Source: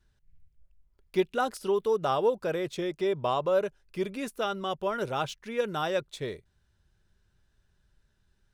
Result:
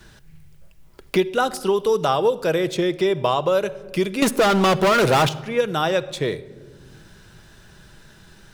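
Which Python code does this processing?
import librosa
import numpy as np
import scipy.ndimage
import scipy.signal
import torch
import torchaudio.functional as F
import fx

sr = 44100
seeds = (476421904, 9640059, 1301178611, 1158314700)

y = fx.leveller(x, sr, passes=5, at=(4.22, 5.29))
y = fx.room_shoebox(y, sr, seeds[0], volume_m3=3900.0, walls='furnished', distance_m=0.67)
y = fx.band_squash(y, sr, depth_pct=70)
y = y * librosa.db_to_amplitude(6.0)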